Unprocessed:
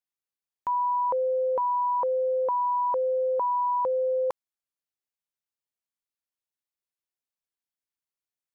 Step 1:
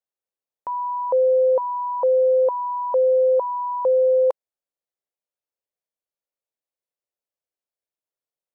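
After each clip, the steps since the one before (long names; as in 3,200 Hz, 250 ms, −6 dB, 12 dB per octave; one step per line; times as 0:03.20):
parametric band 540 Hz +14.5 dB 1.2 octaves
level −5.5 dB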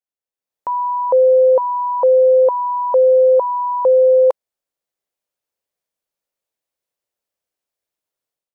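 automatic gain control gain up to 12 dB
level −4.5 dB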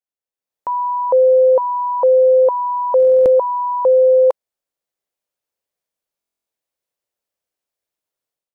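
buffer that repeats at 0:02.98/0:06.19, samples 1,024, times 11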